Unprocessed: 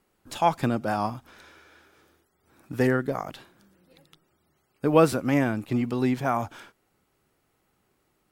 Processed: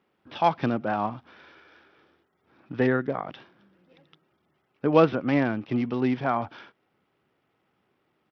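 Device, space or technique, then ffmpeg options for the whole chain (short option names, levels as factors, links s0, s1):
Bluetooth headset: -af "highpass=120,aresample=8000,aresample=44100" -ar 44100 -c:a sbc -b:a 64k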